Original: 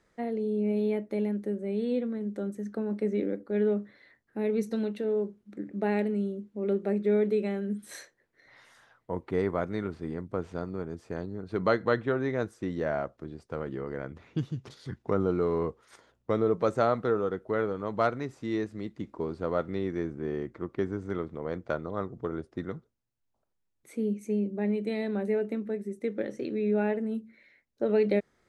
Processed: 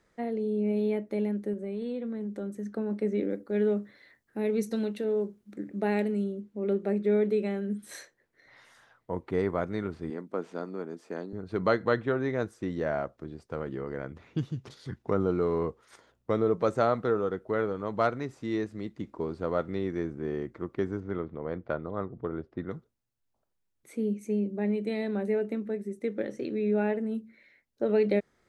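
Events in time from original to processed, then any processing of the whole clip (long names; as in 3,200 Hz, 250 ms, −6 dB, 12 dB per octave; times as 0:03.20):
0:01.53–0:02.67: downward compressor, threshold −30 dBFS
0:03.30–0:06.24: high-shelf EQ 5,000 Hz +7.5 dB
0:10.10–0:11.33: high-pass filter 200 Hz 24 dB per octave
0:21.00–0:22.71: high-frequency loss of the air 230 metres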